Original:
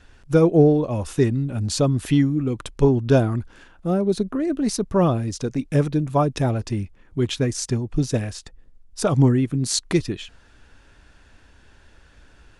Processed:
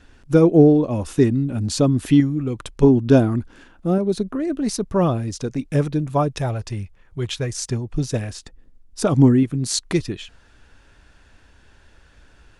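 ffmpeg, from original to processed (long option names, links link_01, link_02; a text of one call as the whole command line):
ffmpeg -i in.wav -af "asetnsamples=nb_out_samples=441:pad=0,asendcmd='2.2 equalizer g -1.5;2.83 equalizer g 6.5;3.98 equalizer g -0.5;6.28 equalizer g -10.5;7.53 equalizer g -3;8.29 equalizer g 5.5;9.43 equalizer g -1',equalizer=frequency=270:width_type=o:width=0.88:gain=5.5" out.wav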